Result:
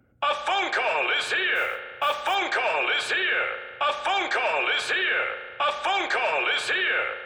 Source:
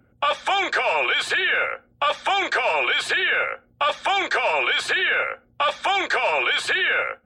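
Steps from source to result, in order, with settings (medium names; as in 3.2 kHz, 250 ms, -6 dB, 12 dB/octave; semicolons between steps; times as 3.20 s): 1.55–2.35 s: modulation noise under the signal 26 dB; spring tank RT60 1.7 s, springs 35 ms, chirp 40 ms, DRR 8 dB; trim -3.5 dB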